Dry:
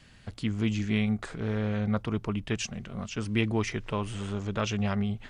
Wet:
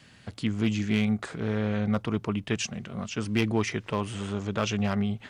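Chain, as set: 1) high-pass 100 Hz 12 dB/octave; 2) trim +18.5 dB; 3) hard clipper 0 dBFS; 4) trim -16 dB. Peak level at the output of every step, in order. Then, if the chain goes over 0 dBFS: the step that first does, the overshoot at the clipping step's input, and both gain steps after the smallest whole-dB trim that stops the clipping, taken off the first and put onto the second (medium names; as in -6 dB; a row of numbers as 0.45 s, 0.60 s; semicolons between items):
-11.0 dBFS, +7.5 dBFS, 0.0 dBFS, -16.0 dBFS; step 2, 7.5 dB; step 2 +10.5 dB, step 4 -8 dB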